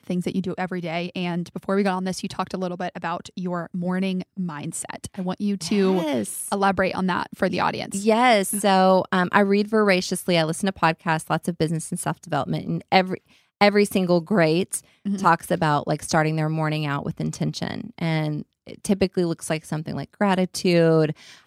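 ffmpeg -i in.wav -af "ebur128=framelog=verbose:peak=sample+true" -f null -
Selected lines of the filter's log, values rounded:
Integrated loudness:
  I:         -22.9 LUFS
  Threshold: -33.1 LUFS
Loudness range:
  LRA:         7.0 LU
  Threshold: -43.0 LUFS
  LRA low:   -26.9 LUFS
  LRA high:  -19.9 LUFS
Sample peak:
  Peak:       -1.2 dBFS
True peak:
  Peak:       -1.2 dBFS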